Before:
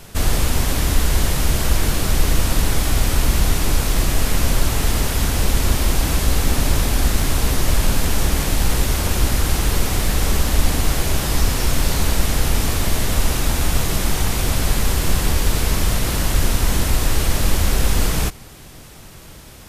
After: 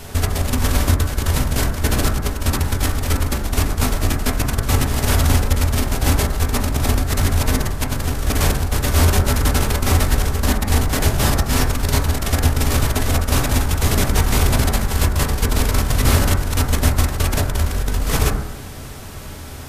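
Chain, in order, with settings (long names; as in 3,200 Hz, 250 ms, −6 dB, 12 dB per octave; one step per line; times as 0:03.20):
compressor whose output falls as the input rises −19 dBFS, ratio −0.5
on a send: convolution reverb RT60 0.90 s, pre-delay 6 ms, DRR 1 dB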